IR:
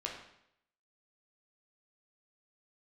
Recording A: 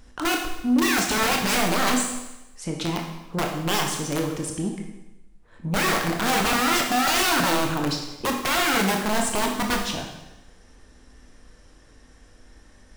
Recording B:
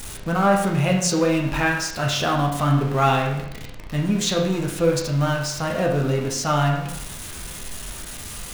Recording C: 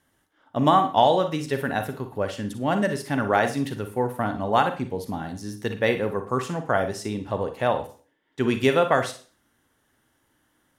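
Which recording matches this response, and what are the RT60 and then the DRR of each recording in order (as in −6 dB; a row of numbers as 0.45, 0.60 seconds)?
B; 1.0, 0.75, 0.45 seconds; 1.0, −1.5, 7.5 decibels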